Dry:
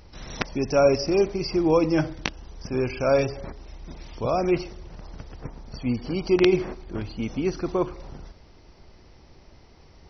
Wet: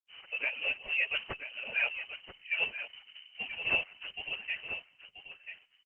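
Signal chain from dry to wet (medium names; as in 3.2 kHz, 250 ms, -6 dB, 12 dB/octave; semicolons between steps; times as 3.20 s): octave divider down 1 oct, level -5 dB; formant-preserving pitch shift -1.5 st; de-hum 112.8 Hz, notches 3; gate -40 dBFS, range -55 dB; tilt EQ +2 dB/octave; in parallel at -10.5 dB: overload inside the chain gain 18.5 dB; on the sum: trance gate "xxx.xxx." 125 bpm -12 dB; plain phase-vocoder stretch 0.58×; level-controlled noise filter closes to 780 Hz, open at -24.5 dBFS; on a send: delay 984 ms -10 dB; on the sum: frequency inversion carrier 3 kHz; trim -6 dB; Opus 12 kbps 48 kHz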